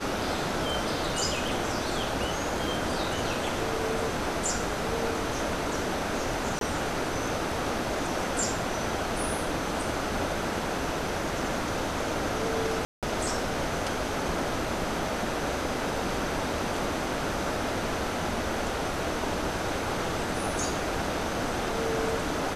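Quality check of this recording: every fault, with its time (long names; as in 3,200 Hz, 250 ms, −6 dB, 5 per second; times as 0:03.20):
0:06.59–0:06.61: drop-out 22 ms
0:10.78: drop-out 2 ms
0:12.85–0:13.03: drop-out 177 ms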